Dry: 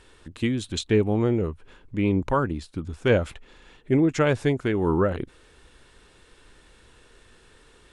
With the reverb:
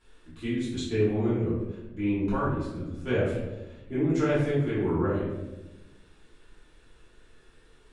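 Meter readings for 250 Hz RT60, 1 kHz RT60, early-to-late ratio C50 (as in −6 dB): 1.6 s, 0.90 s, 0.5 dB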